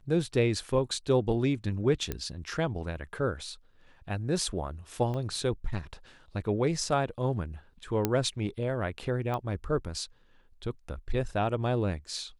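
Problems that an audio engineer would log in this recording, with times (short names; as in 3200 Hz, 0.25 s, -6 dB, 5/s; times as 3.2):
2.12 pop -17 dBFS
5.14 gap 2.5 ms
8.05 pop -11 dBFS
9.34 pop -21 dBFS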